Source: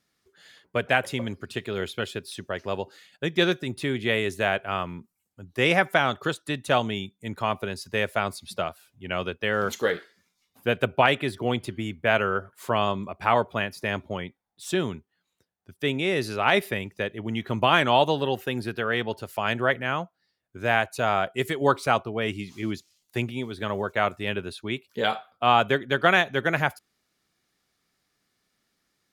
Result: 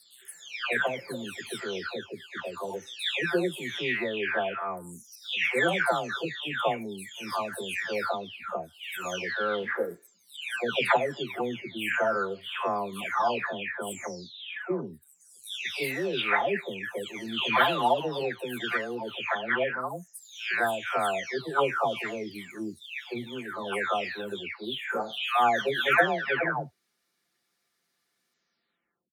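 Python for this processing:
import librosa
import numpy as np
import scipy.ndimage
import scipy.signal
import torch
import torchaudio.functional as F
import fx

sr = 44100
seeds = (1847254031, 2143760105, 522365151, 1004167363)

y = fx.spec_delay(x, sr, highs='early', ms=785)
y = fx.highpass(y, sr, hz=180.0, slope=6)
y = fx.low_shelf(y, sr, hz=300.0, db=-5.0)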